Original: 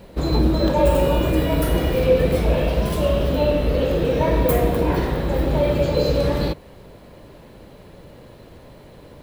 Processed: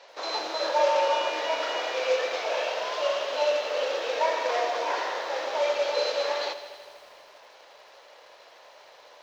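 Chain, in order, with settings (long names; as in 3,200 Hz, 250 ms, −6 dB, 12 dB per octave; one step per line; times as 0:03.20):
variable-slope delta modulation 32 kbit/s
high-pass filter 640 Hz 24 dB per octave
feedback echo at a low word length 81 ms, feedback 80%, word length 9 bits, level −14 dB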